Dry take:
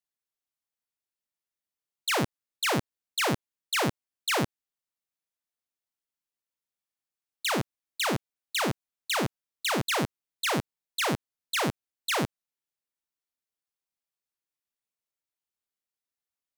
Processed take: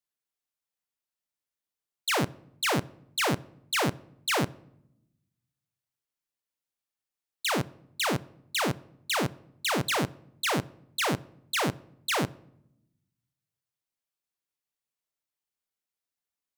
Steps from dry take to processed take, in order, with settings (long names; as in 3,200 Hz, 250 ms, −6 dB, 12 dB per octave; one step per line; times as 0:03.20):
rectangular room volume 2,700 cubic metres, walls furnished, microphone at 0.35 metres